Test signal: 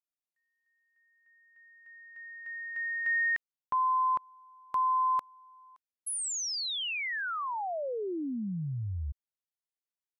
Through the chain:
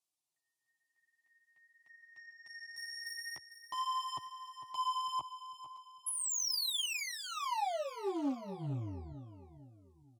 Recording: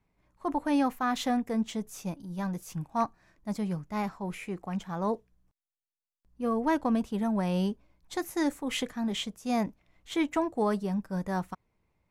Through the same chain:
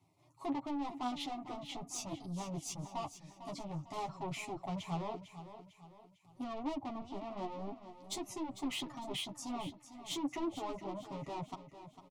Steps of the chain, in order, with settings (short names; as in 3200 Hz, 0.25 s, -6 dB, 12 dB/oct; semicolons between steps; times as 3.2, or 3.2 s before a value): treble ducked by the level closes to 1200 Hz, closed at -24.5 dBFS; LPF 12000 Hz 24 dB/oct; reverb removal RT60 0.51 s; HPF 69 Hz 24 dB/oct; high shelf 4200 Hz +3.5 dB; limiter -27.5 dBFS; soft clip -39.5 dBFS; chorus voices 2, 0.47 Hz, delay 11 ms, depth 3.8 ms; fixed phaser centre 320 Hz, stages 8; on a send: feedback echo 0.451 s, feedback 43%, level -12 dB; on the sum: Doppler distortion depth 0.13 ms; gain +10 dB